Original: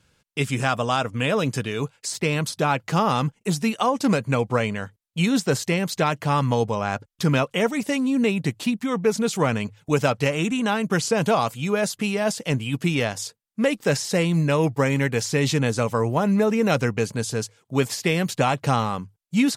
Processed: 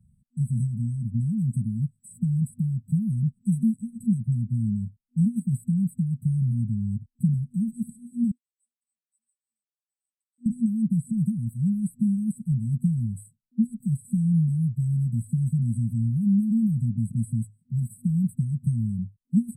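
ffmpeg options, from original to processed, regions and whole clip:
ffmpeg -i in.wav -filter_complex "[0:a]asettb=1/sr,asplit=3[link_01][link_02][link_03];[link_01]atrim=end=8.314[link_04];[link_02]atrim=start=8.31:end=10.46,asetpts=PTS-STARTPTS,afade=type=in:duration=0.004:curve=qsin,afade=type=out:start_time=2.146:duration=0.004:curve=qsin,acompressor=threshold=-25dB:ratio=3:attack=3.2:release=140:knee=1:detection=peak,tremolo=f=3.3:d=0.89,asuperpass=centerf=3000:order=8:qfactor=0.69[link_05];[link_03]atrim=start=10.456[link_06];[link_04][link_05]acrossfade=duration=0.004:curve1=hsin:curve2=qsin[link_07];[link_07][link_06]acrossfade=duration=0.004:curve1=qsin:curve2=hsin,acrossover=split=230|1900[link_08][link_09][link_10];[link_08]acompressor=threshold=-28dB:ratio=4[link_11];[link_09]acompressor=threshold=-30dB:ratio=4[link_12];[link_10]acompressor=threshold=-31dB:ratio=4[link_13];[link_11][link_12][link_13]amix=inputs=3:normalize=0,afftfilt=real='re*(1-between(b*sr/4096,240,7800))':imag='im*(1-between(b*sr/4096,240,7800))':win_size=4096:overlap=0.75,aemphasis=mode=reproduction:type=75fm,volume=5dB" out.wav

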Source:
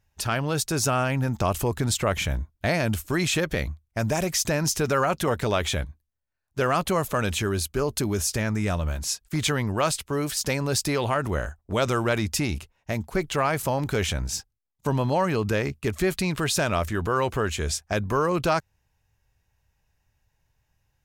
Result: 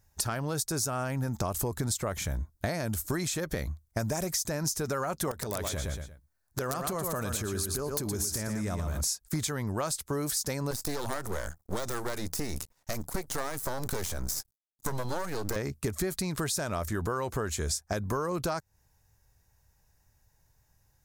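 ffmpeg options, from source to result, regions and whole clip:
ffmpeg -i in.wav -filter_complex "[0:a]asettb=1/sr,asplit=3[link_01][link_02][link_03];[link_01]atrim=end=5.314[link_04];[link_02]atrim=start=5.31:end=9.01,asetpts=PTS-STARTPTS,afade=type=in:duration=0.004:curve=qsin,afade=type=out:start_time=3.696:duration=0.004:curve=qsin,aecho=1:1:116|232|348:0.422|0.118|0.0331,atrim=end_sample=163170,acompressor=threshold=-30dB:ratio=6:attack=3.2:release=140:knee=1:detection=peak,aeval=exprs='(mod(15*val(0)+1,2)-1)/15':channel_layout=same[link_05];[link_03]atrim=start=9.006[link_06];[link_04][link_05]acrossfade=duration=0.004:curve1=hsin:curve2=qsin[link_07];[link_07][link_06]acrossfade=duration=0.004:curve1=qsin:curve2=hsin,asettb=1/sr,asplit=3[link_08][link_09][link_10];[link_08]atrim=end=10.714[link_11];[link_09]atrim=start=10.71:end=15.56,asetpts=PTS-STARTPTS,afade=type=in:duration=0.004:curve=qsin,afade=type=out:start_time=4.846:duration=0.004:curve=qsin,deesser=0.65,aeval=exprs='max(val(0),0)':channel_layout=same,highshelf=frequency=4800:gain=6.5[link_12];[link_10]atrim=start=15.556[link_13];[link_11][link_12]acrossfade=duration=0.004:curve1=hsin:curve2=qsin[link_14];[link_14][link_13]acrossfade=duration=0.004:curve1=qsin:curve2=hsin,highshelf=frequency=3800:gain=7.5,acompressor=threshold=-30dB:ratio=10,equalizer=frequency=2800:width_type=o:width=0.81:gain=-11,volume=3dB" out.wav

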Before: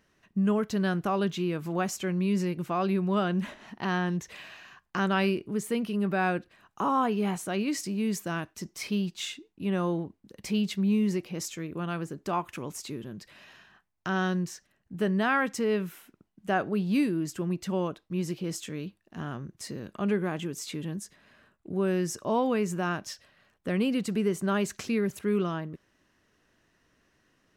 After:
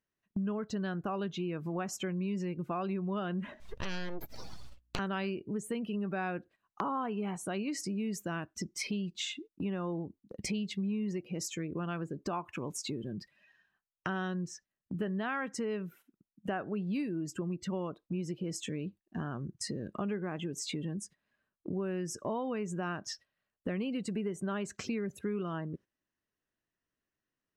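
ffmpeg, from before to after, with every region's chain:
ffmpeg -i in.wav -filter_complex "[0:a]asettb=1/sr,asplit=3[link_01][link_02][link_03];[link_01]atrim=end=3.604[link_04];[link_02]atrim=start=3.6:end=4.99,asetpts=PTS-STARTPTS,afade=type=in:duration=0.004:curve=qsin,afade=type=out:start_time=1.386:duration=0.004:curve=qsin,highshelf=frequency=4300:gain=12,aeval=exprs='abs(val(0))':channel_layout=same,aeval=exprs='val(0)+0.000891*(sin(2*PI*60*n/s)+sin(2*PI*2*60*n/s)/2+sin(2*PI*3*60*n/s)/3+sin(2*PI*4*60*n/s)/4+sin(2*PI*5*60*n/s)/5)':channel_layout=same[link_05];[link_03]atrim=start=4.986[link_06];[link_04][link_05]acrossfade=duration=0.004:curve1=hsin:curve2=qsin[link_07];[link_07][link_06]acrossfade=duration=0.004:curve1=qsin:curve2=hsin,afftdn=noise_reduction=18:noise_floor=-45,agate=range=-12dB:threshold=-51dB:ratio=16:detection=peak,acompressor=threshold=-43dB:ratio=4,volume=7.5dB" out.wav

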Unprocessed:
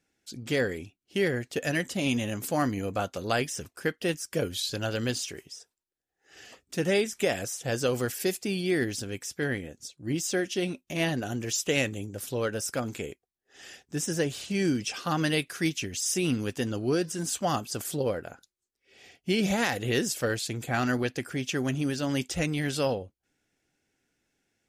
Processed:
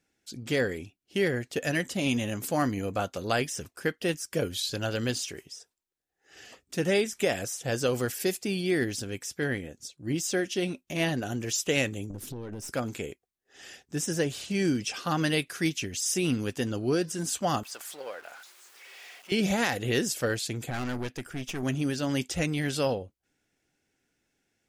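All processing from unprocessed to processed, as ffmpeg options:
ffmpeg -i in.wav -filter_complex "[0:a]asettb=1/sr,asplit=3[link_01][link_02][link_03];[link_01]atrim=end=12.104[link_04];[link_02]atrim=start=12.1:end=12.72,asetpts=PTS-STARTPTS,afade=type=in:duration=0.004:curve=qsin,afade=type=out:start_time=0.616:duration=0.004:curve=qsin,lowshelf=frequency=480:width_type=q:width=1.5:gain=11,acompressor=threshold=-31dB:ratio=16:attack=3.2:release=140:knee=1:detection=peak,aeval=exprs='(tanh(39.8*val(0)+0.4)-tanh(0.4))/39.8':channel_layout=same[link_05];[link_03]atrim=start=12.716[link_06];[link_04][link_05]acrossfade=duration=0.004:curve1=hsin:curve2=qsin[link_07];[link_07][link_06]acrossfade=duration=0.004:curve1=qsin:curve2=hsin,asettb=1/sr,asplit=3[link_08][link_09][link_10];[link_08]atrim=end=17.634[link_11];[link_09]atrim=start=17.63:end=19.32,asetpts=PTS-STARTPTS,afade=type=in:duration=0.004:curve=qsin,afade=type=out:start_time=1.686:duration=0.004:curve=qsin,aeval=exprs='val(0)+0.5*0.0112*sgn(val(0))':channel_layout=same,highpass=950,highshelf=frequency=2800:gain=-8.5[link_12];[link_10]atrim=start=19.316[link_13];[link_11][link_12]acrossfade=duration=0.004:curve1=hsin:curve2=qsin[link_14];[link_14][link_13]acrossfade=duration=0.004:curve1=qsin:curve2=hsin,asettb=1/sr,asplit=3[link_15][link_16][link_17];[link_15]atrim=end=20.704[link_18];[link_16]atrim=start=20.7:end=21.63,asetpts=PTS-STARTPTS,afade=type=in:duration=0.004:curve=qsin,afade=type=out:start_time=0.926:duration=0.004:curve=qsin,bandreject=frequency=4300:width=11,aeval=exprs='(tanh(28.2*val(0)+0.65)-tanh(0.65))/28.2':channel_layout=same[link_19];[link_17]atrim=start=21.626[link_20];[link_18][link_19]acrossfade=duration=0.004:curve1=hsin:curve2=qsin[link_21];[link_21][link_20]acrossfade=duration=0.004:curve1=qsin:curve2=hsin" out.wav

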